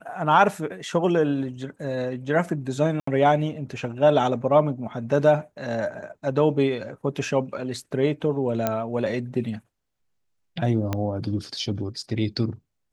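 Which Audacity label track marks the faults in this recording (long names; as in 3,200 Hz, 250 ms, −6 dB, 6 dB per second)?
3.000000	3.070000	drop-out 74 ms
8.670000	8.670000	click −9 dBFS
10.930000	10.930000	click −12 dBFS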